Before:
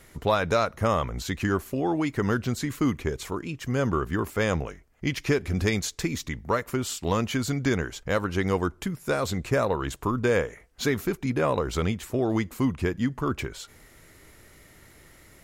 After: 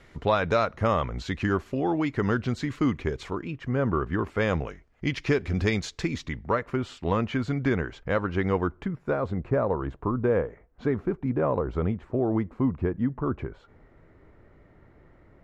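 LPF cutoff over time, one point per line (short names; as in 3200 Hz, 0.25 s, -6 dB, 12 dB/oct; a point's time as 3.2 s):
3.22 s 3900 Hz
3.81 s 1700 Hz
4.68 s 4300 Hz
6.12 s 4300 Hz
6.59 s 2400 Hz
8.5 s 2400 Hz
9.35 s 1100 Hz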